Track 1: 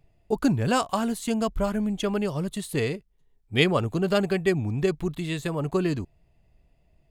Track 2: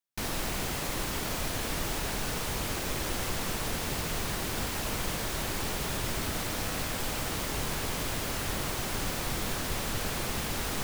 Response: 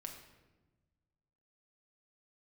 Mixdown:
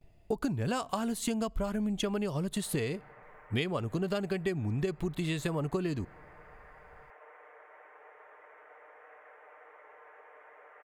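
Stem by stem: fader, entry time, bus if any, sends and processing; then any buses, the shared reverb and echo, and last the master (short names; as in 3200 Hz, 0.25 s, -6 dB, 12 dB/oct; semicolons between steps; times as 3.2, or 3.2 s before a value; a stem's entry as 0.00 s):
+2.0 dB, 0.00 s, send -23.5 dB, gate with hold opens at -56 dBFS
-17.0 dB, 2.35 s, no send, elliptic band-pass 460–2000 Hz, stop band 40 dB; comb 6.6 ms, depth 62%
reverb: on, RT60 1.2 s, pre-delay 5 ms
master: compressor 12:1, threshold -28 dBFS, peak gain reduction 16 dB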